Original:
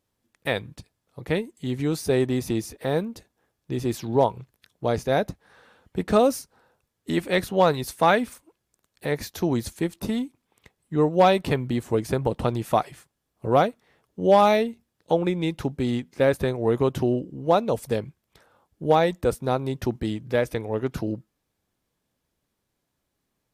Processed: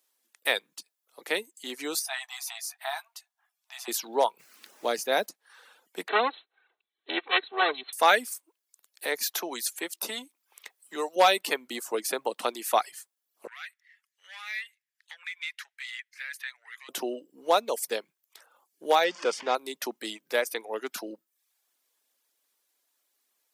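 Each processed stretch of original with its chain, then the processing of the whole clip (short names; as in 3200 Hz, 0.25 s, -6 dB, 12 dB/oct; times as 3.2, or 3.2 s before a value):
1.99–3.88 brick-wall FIR high-pass 640 Hz + tilt -2 dB/oct + doubler 15 ms -8 dB
4.38–5.25 tone controls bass +8 dB, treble -1 dB + added noise brown -41 dBFS
6.08–7.93 minimum comb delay 2.6 ms + brick-wall FIR low-pass 4200 Hz
9.26–11.16 low shelf 260 Hz -9 dB + three-band squash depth 40%
13.47–16.89 compressor 12:1, threshold -20 dBFS + overdrive pedal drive 12 dB, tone 3300 Hz, clips at -13 dBFS + ladder high-pass 1700 Hz, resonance 65%
19.04–19.55 zero-crossing step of -29.5 dBFS + LPF 5500 Hz 24 dB/oct + notch 4000 Hz, Q 6.9
whole clip: reverb removal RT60 0.55 s; Bessel high-pass 410 Hz, order 8; tilt +3 dB/oct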